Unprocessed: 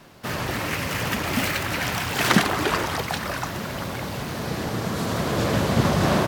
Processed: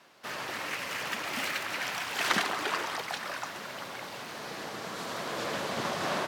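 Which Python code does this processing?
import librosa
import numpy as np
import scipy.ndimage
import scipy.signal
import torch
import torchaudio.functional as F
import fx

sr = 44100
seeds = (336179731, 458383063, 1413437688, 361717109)

y = fx.weighting(x, sr, curve='A')
y = y + 10.0 ** (-14.0 / 20.0) * np.pad(y, (int(135 * sr / 1000.0), 0))[:len(y)]
y = F.gain(torch.from_numpy(y), -7.5).numpy()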